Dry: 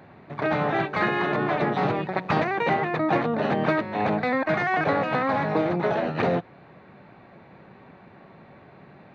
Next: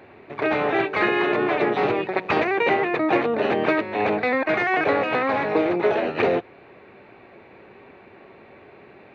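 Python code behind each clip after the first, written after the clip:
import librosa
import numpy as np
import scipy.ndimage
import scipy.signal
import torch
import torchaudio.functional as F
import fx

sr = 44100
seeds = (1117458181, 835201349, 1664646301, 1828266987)

y = fx.graphic_eq_15(x, sr, hz=(160, 400, 2500), db=(-10, 8, 8))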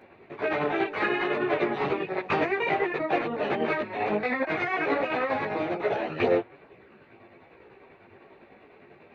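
y = fx.tremolo_shape(x, sr, shape='saw_down', hz=10.0, depth_pct=55)
y = fx.chorus_voices(y, sr, voices=4, hz=0.57, base_ms=16, depth_ms=4.6, mix_pct=55)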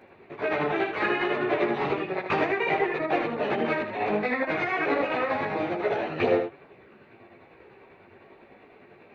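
y = x + 10.0 ** (-7.5 / 20.0) * np.pad(x, (int(77 * sr / 1000.0), 0))[:len(x)]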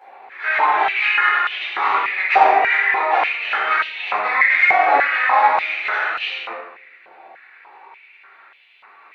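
y = fx.rider(x, sr, range_db=10, speed_s=0.5)
y = fx.room_shoebox(y, sr, seeds[0], volume_m3=360.0, walls='mixed', distance_m=4.2)
y = fx.filter_held_highpass(y, sr, hz=3.4, low_hz=760.0, high_hz=3000.0)
y = y * librosa.db_to_amplitude(-3.5)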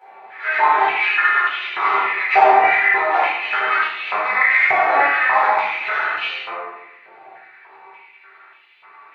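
y = fx.rev_fdn(x, sr, rt60_s=0.8, lf_ratio=1.45, hf_ratio=0.5, size_ms=46.0, drr_db=-2.0)
y = y * librosa.db_to_amplitude(-3.5)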